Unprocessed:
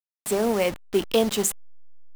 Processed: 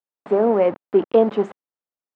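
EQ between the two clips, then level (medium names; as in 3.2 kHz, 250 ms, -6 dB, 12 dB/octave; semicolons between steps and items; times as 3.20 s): high-pass 250 Hz 12 dB/octave; low-pass 1.1 kHz 12 dB/octave; distance through air 100 m; +7.5 dB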